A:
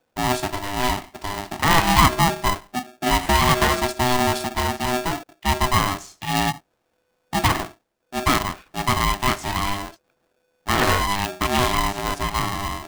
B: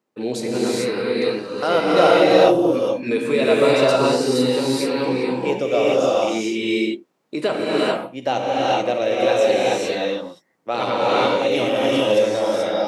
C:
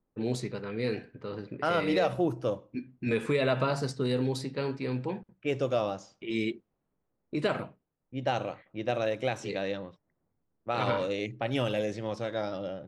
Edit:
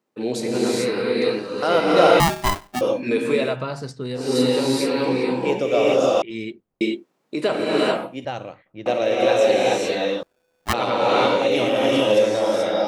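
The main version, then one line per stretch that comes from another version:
B
2.20–2.81 s: from A
3.45–4.26 s: from C, crossfade 0.24 s
6.22–6.81 s: from C
8.25–8.86 s: from C
10.23–10.73 s: from A

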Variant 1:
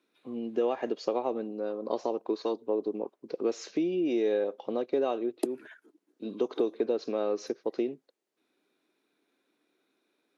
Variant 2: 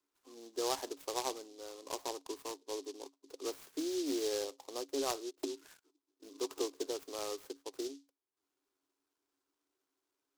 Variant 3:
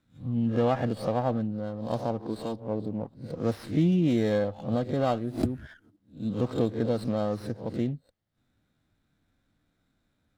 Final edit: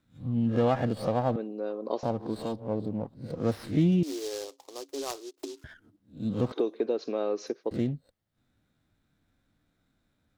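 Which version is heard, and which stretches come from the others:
3
1.36–2.03 s: from 1
4.03–5.64 s: from 2
6.52–7.71 s: from 1

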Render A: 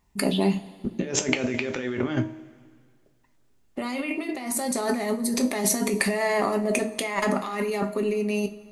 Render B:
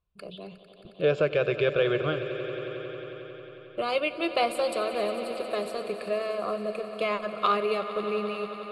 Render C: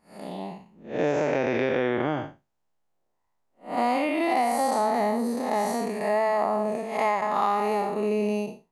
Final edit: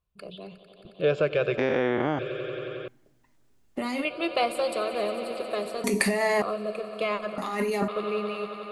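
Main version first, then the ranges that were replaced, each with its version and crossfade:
B
1.58–2.19 s: from C
2.88–4.05 s: from A
5.84–6.42 s: from A
7.38–7.88 s: from A

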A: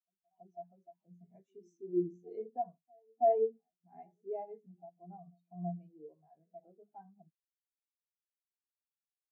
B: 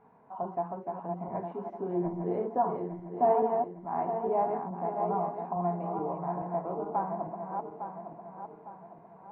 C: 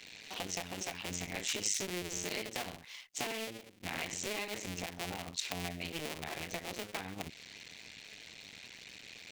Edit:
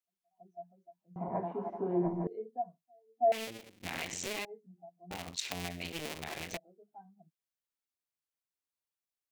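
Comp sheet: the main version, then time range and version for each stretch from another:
A
1.16–2.27 s: from B
3.32–4.45 s: from C
5.11–6.57 s: from C

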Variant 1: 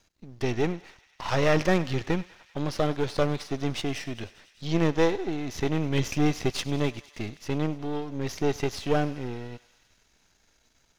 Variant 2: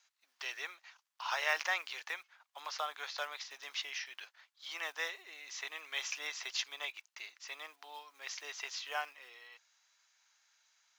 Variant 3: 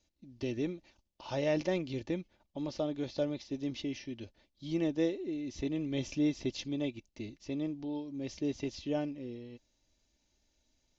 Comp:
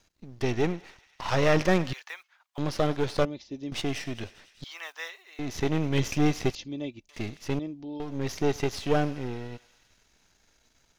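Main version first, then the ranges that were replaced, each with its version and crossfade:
1
1.93–2.58 s: from 2
3.25–3.72 s: from 3
4.64–5.39 s: from 2
6.55–7.09 s: from 3
7.59–8.00 s: from 3

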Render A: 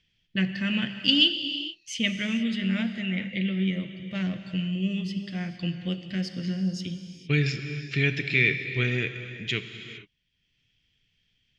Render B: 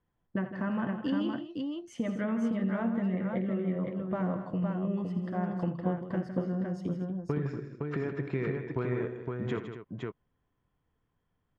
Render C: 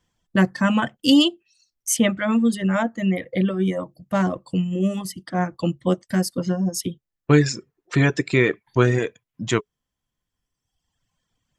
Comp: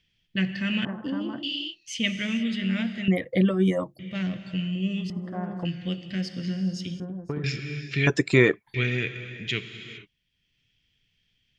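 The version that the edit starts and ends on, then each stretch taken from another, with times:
A
0.85–1.43 s: from B
3.08–3.99 s: from C
5.10–5.65 s: from B
7.00–7.44 s: from B
8.07–8.74 s: from C

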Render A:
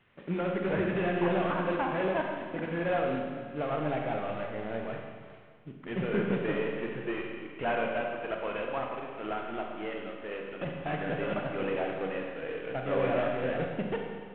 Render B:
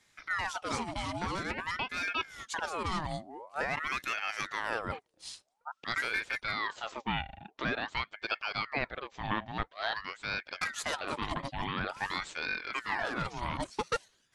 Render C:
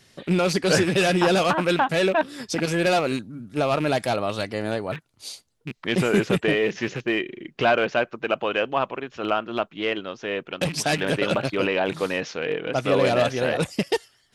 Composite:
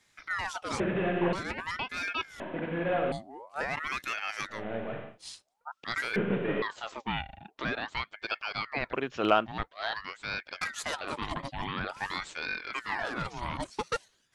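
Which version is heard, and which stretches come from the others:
B
0.80–1.33 s: from A
2.40–3.12 s: from A
4.56–5.11 s: from A, crossfade 0.16 s
6.16–6.62 s: from A
8.93–9.46 s: from C

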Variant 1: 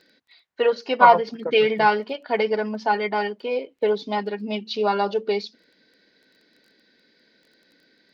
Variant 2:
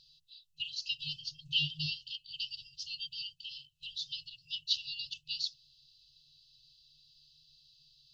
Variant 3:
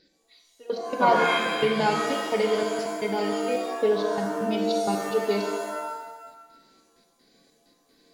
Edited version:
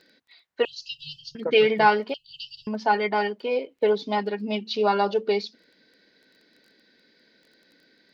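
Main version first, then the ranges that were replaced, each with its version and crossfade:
1
0.65–1.35 s: from 2
2.14–2.67 s: from 2
not used: 3

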